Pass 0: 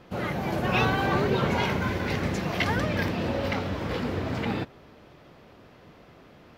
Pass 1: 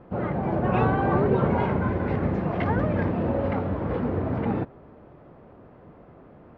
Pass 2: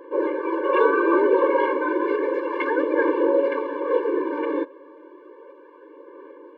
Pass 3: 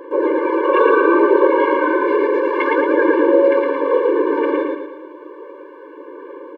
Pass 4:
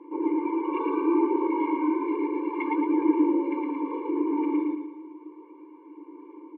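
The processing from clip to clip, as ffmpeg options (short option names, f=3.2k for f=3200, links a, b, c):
-af "lowpass=1.1k,volume=3.5dB"
-af "bass=f=250:g=-10,treble=f=4k:g=-8,aphaser=in_gain=1:out_gain=1:delay=3.7:decay=0.33:speed=0.32:type=sinusoidal,afftfilt=real='re*eq(mod(floor(b*sr/1024/300),2),1)':imag='im*eq(mod(floor(b*sr/1024/300),2),1)':win_size=1024:overlap=0.75,volume=8.5dB"
-af "acompressor=threshold=-26dB:ratio=1.5,aecho=1:1:112|224|336|448|560|672:0.708|0.326|0.15|0.0689|0.0317|0.0146,volume=7.5dB"
-filter_complex "[0:a]asplit=3[a][b][c];[a]bandpass=f=300:t=q:w=8,volume=0dB[d];[b]bandpass=f=870:t=q:w=8,volume=-6dB[e];[c]bandpass=f=2.24k:t=q:w=8,volume=-9dB[f];[d][e][f]amix=inputs=3:normalize=0"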